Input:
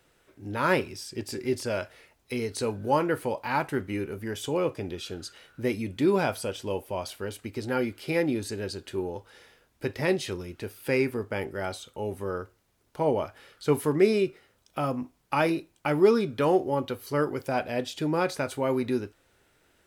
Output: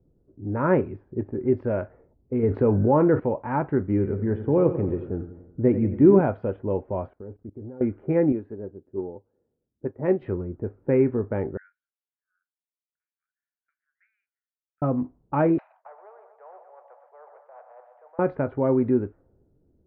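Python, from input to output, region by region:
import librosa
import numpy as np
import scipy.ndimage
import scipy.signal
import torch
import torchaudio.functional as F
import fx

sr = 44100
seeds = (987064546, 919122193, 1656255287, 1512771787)

y = fx.chain(x, sr, fx.high_shelf(hz=5600.0, db=-11.5),
    fx.env_flatten(amount_pct=50), at=(2.43, 3.2))
y = fx.chain(y, sr, fx.low_shelf(hz=480.0, db=3.0),
    fx.echo_feedback(ms=90, feedback_pct=57, wet_db=-11.5), at=(3.87, 6.21))
y = fx.chain(y, sr, fx.tilt_shelf(db=-3.0, hz=830.0),
    fx.level_steps(step_db=21),
    fx.doppler_dist(depth_ms=0.13), at=(7.08, 7.81))
y = fx.chain(y, sr, fx.highpass(hz=180.0, slope=6),
    fx.upward_expand(threshold_db=-47.0, expansion=1.5), at=(8.32, 10.22))
y = fx.chain(y, sr, fx.steep_highpass(hz=1500.0, slope=96),
    fx.high_shelf(hz=4600.0, db=-9.5),
    fx.band_widen(depth_pct=40), at=(11.57, 14.82))
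y = fx.chain(y, sr, fx.steep_highpass(hz=680.0, slope=72),
    fx.echo_feedback(ms=123, feedback_pct=53, wet_db=-16.0),
    fx.spectral_comp(ratio=4.0), at=(15.58, 18.19))
y = scipy.signal.sosfilt(scipy.signal.butter(4, 1900.0, 'lowpass', fs=sr, output='sos'), y)
y = fx.env_lowpass(y, sr, base_hz=310.0, full_db=-23.5)
y = fx.tilt_shelf(y, sr, db=8.0, hz=970.0)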